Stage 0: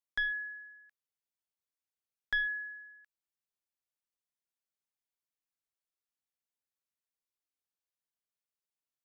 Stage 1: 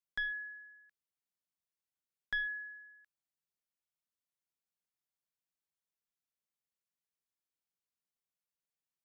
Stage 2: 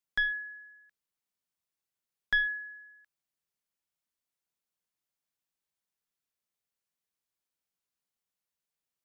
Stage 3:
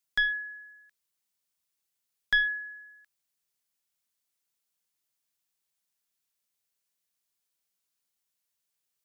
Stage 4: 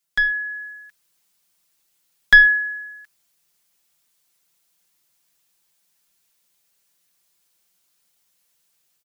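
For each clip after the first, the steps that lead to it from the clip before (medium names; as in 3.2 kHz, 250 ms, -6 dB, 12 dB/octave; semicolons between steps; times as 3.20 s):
peaking EQ 170 Hz +7 dB 0.66 oct; trim -4 dB
upward expansion 1.5:1, over -44 dBFS; trim +9 dB
treble shelf 2.6 kHz +8.5 dB
comb 5.8 ms; level rider gain up to 9 dB; trim +4 dB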